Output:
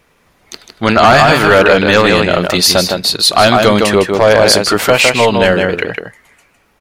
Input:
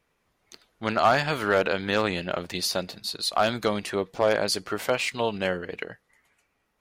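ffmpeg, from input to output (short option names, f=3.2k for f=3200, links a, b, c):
-filter_complex "[0:a]asplit=2[a][b];[b]adelay=157.4,volume=-6dB,highshelf=f=4k:g=-3.54[c];[a][c]amix=inputs=2:normalize=0,apsyclip=19.5dB,volume=-1.5dB"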